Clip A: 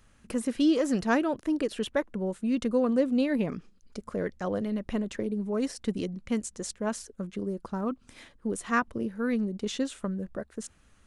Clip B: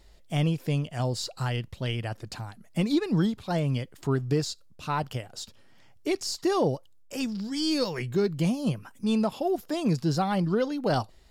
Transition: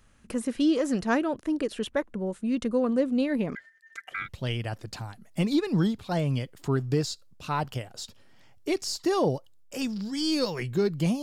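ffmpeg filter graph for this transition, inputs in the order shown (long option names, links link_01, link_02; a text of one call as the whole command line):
ffmpeg -i cue0.wav -i cue1.wav -filter_complex "[0:a]asettb=1/sr,asplit=3[link_01][link_02][link_03];[link_01]atrim=end=3.554[link_04];[link_02]atrim=start=3.55:end=4.29,asetpts=PTS-STARTPTS,afade=type=in:duration=0.004:curve=qsin,afade=type=out:start_time=0.736:duration=0.004:curve=qsin,aeval=exprs='val(0)*sin(2*PI*1800*n/s)':channel_layout=same[link_05];[link_03]atrim=start=4.286[link_06];[link_04][link_05]acrossfade=duration=0.004:curve1=hsin:curve2=qsin[link_07];[link_07][link_06]acrossfade=duration=0.004:curve1=qsin:curve2=hsin,apad=whole_dur=11.22,atrim=end=11.22,atrim=end=4.29,asetpts=PTS-STARTPTS[link_08];[1:a]atrim=start=1.6:end=8.61,asetpts=PTS-STARTPTS[link_09];[link_08][link_09]acrossfade=duration=0.08:curve1=tri:curve2=tri" out.wav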